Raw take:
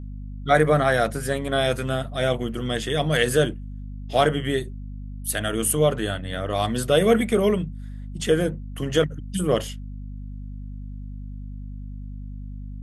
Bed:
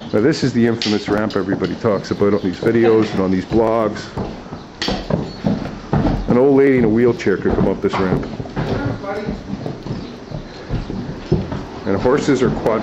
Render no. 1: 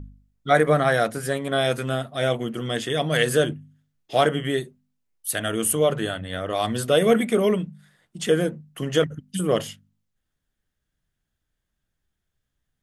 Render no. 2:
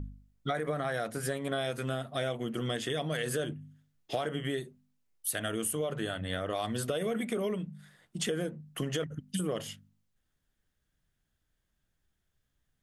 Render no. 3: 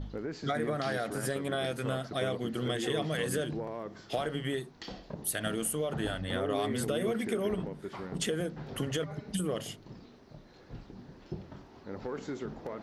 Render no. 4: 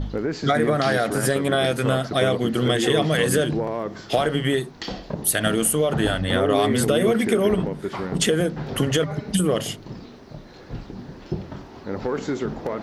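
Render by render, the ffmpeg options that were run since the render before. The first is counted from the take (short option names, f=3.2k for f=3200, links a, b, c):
-af "bandreject=f=50:t=h:w=4,bandreject=f=100:t=h:w=4,bandreject=f=150:t=h:w=4,bandreject=f=200:t=h:w=4,bandreject=f=250:t=h:w=4"
-af "alimiter=limit=-12.5dB:level=0:latency=1:release=39,acompressor=threshold=-30dB:ratio=6"
-filter_complex "[1:a]volume=-23.5dB[a];[0:a][a]amix=inputs=2:normalize=0"
-af "volume=12dB"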